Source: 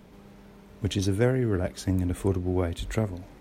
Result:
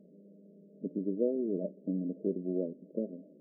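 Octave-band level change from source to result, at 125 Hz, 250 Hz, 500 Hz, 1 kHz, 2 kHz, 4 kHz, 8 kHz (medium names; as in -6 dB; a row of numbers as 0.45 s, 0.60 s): -18.0 dB, -5.0 dB, -5.0 dB, under -25 dB, under -40 dB, under -40 dB, under -40 dB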